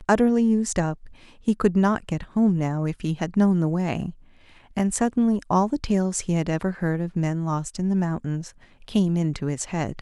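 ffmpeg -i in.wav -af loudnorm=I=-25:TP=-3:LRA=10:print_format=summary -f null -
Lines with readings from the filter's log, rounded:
Input Integrated:    -24.3 LUFS
Input True Peak:      -5.2 dBTP
Input LRA:             3.2 LU
Input Threshold:     -34.6 LUFS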